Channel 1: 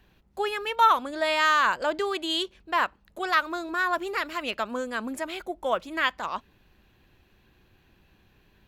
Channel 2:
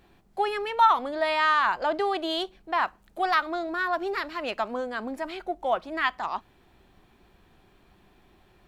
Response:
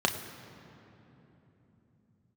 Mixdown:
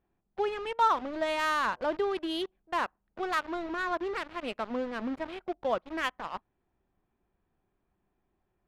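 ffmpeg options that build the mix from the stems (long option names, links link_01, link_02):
-filter_complex "[0:a]equalizer=frequency=1600:width=0.5:gain=-9.5,aeval=exprs='val(0)*gte(abs(val(0)),0.0133)':channel_layout=same,volume=1dB[link_01];[1:a]volume=-18dB[link_02];[link_01][link_02]amix=inputs=2:normalize=0,equalizer=frequency=8300:width=1.1:gain=-15,adynamicsmooth=sensitivity=5:basefreq=2500"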